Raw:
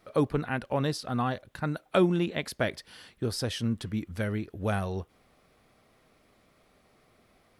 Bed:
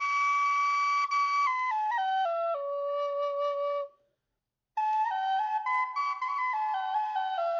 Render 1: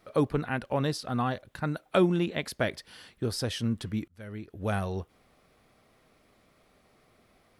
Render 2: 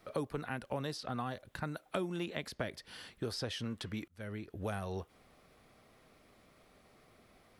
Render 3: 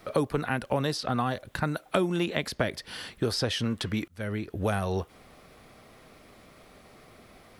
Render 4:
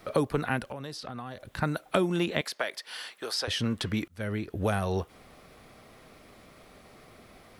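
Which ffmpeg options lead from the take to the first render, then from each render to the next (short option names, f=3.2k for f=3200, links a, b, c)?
-filter_complex "[0:a]asplit=2[a][b];[a]atrim=end=4.08,asetpts=PTS-STARTPTS,afade=t=out:st=4.076:d=0.004:c=hsin[c];[b]atrim=start=4.08,asetpts=PTS-STARTPTS,afade=t=in:d=0.69[d];[c][d]concat=n=2:v=0:a=1"
-filter_complex "[0:a]acrossover=split=420|5900[a][b][c];[a]acompressor=threshold=-41dB:ratio=4[d];[b]acompressor=threshold=-39dB:ratio=4[e];[c]acompressor=threshold=-57dB:ratio=4[f];[d][e][f]amix=inputs=3:normalize=0"
-af "volume=10.5dB"
-filter_complex "[0:a]asettb=1/sr,asplit=3[a][b][c];[a]atrim=end=0.624[d];[b]atrim=start=0.62:end=1.57,asetpts=PTS-STARTPTS,afade=t=in:d=0.004:c=qsin,afade=t=out:st=0.946:d=0.004:c=qsin,acompressor=threshold=-38dB:ratio=3:attack=3.2:release=140:knee=1:detection=peak[e];[c]atrim=start=1.566[f];[d][e]acrossfade=d=0.004:c1=hsin:c2=qsin[g];[g][f]acrossfade=d=0.004:c1=qsin:c2=hsin,asettb=1/sr,asplit=3[h][i][j];[h]atrim=end=2.414[k];[i]atrim=start=2.41:end=3.48,asetpts=PTS-STARTPTS,afade=t=in:d=0.004:c=qsin,afade=t=out:st=1.066:d=0.004:c=qsin,highpass=660[l];[j]atrim=start=3.476[m];[k][l]acrossfade=d=0.004:c1=hsin:c2=qsin[n];[n][m]acrossfade=d=0.004:c1=qsin:c2=hsin"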